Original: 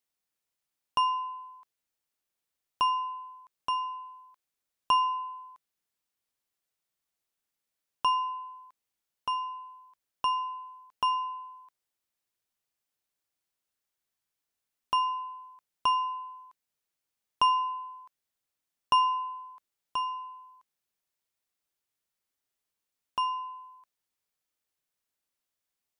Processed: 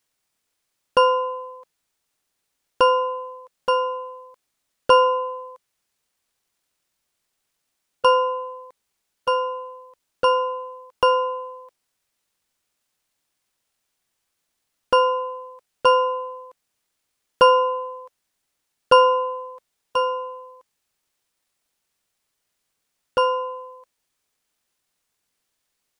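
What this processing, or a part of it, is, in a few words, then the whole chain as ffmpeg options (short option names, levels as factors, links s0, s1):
octave pedal: -filter_complex "[0:a]asplit=2[s0][s1];[s1]asetrate=22050,aresample=44100,atempo=2,volume=1[s2];[s0][s2]amix=inputs=2:normalize=0,volume=2.24"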